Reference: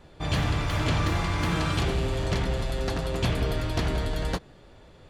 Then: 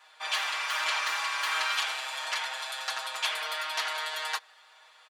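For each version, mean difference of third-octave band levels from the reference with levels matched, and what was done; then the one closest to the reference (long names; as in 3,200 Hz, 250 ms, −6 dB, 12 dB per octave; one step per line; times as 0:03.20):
16.0 dB: high-pass filter 940 Hz 24 dB per octave
comb filter 6.4 ms, depth 88%
level +1.5 dB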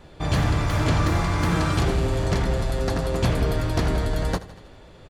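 1.5 dB: repeating echo 80 ms, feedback 58%, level −17 dB
dynamic equaliser 3,000 Hz, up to −6 dB, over −49 dBFS, Q 1.3
level +4.5 dB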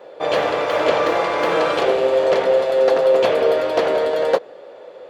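9.0 dB: high-pass with resonance 510 Hz, resonance Q 4.9
parametric band 10,000 Hz −12 dB 2 octaves
level +9 dB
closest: second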